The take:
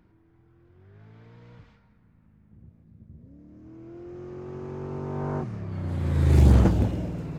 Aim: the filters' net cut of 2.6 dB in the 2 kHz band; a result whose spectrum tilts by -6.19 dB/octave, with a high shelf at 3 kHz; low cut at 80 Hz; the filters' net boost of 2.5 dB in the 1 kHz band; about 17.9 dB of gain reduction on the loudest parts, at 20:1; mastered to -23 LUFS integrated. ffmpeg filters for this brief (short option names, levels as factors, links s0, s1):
-af "highpass=80,equalizer=f=1000:t=o:g=4,equalizer=f=2000:t=o:g=-7,highshelf=f=3000:g=5.5,acompressor=threshold=0.0251:ratio=20,volume=5.96"